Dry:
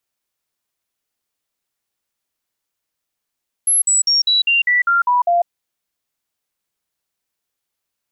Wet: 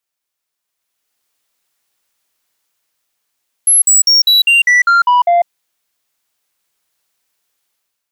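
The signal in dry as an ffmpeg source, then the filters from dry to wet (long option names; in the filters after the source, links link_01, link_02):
-f lavfi -i "aevalsrc='0.266*clip(min(mod(t,0.2),0.15-mod(t,0.2))/0.005,0,1)*sin(2*PI*11100*pow(2,-floor(t/0.2)/2)*mod(t,0.2))':duration=1.8:sample_rate=44100"
-af "lowshelf=frequency=420:gain=-8,dynaudnorm=framelen=640:gausssize=3:maxgain=11.5dB,asoftclip=type=tanh:threshold=-6dB"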